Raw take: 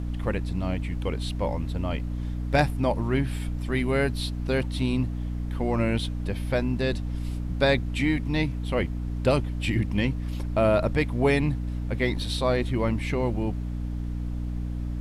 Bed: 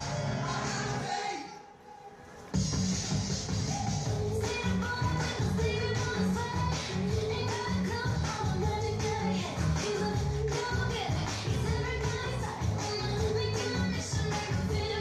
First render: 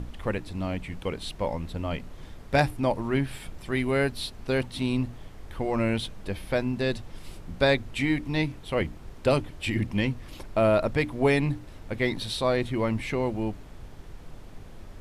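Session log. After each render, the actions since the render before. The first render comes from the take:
mains-hum notches 60/120/180/240/300 Hz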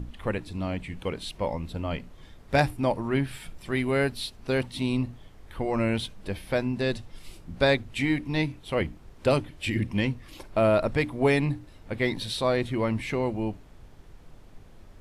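noise reduction from a noise print 6 dB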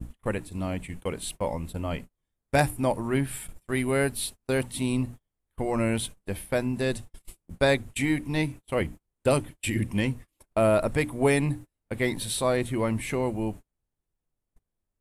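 high shelf with overshoot 6,600 Hz +10 dB, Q 1.5
noise gate −37 dBFS, range −35 dB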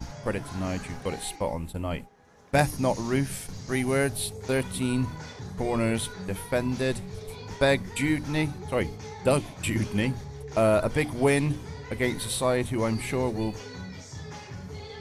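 mix in bed −8.5 dB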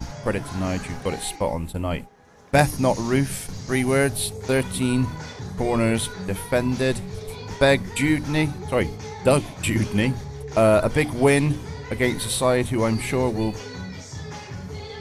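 level +5 dB

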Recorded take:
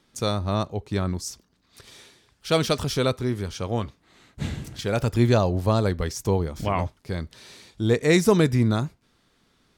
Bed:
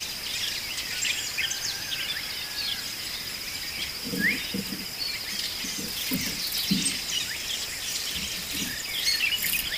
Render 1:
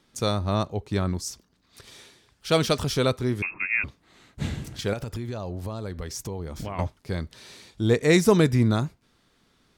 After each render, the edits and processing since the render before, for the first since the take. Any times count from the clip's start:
0:03.42–0:03.84: voice inversion scrambler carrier 2,600 Hz
0:04.93–0:06.79: downward compressor 8 to 1, threshold −29 dBFS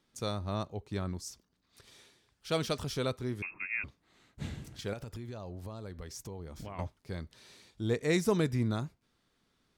level −10 dB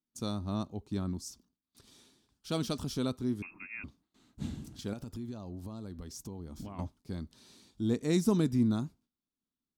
noise gate with hold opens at −57 dBFS
octave-band graphic EQ 125/250/500/2,000 Hz −3/+9/−7/−10 dB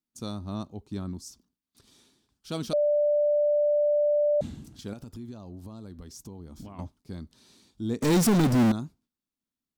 0:02.73–0:04.41: beep over 590 Hz −20 dBFS
0:08.02–0:08.72: power curve on the samples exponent 0.35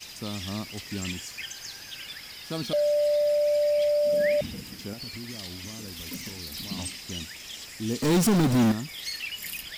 mix in bed −9.5 dB

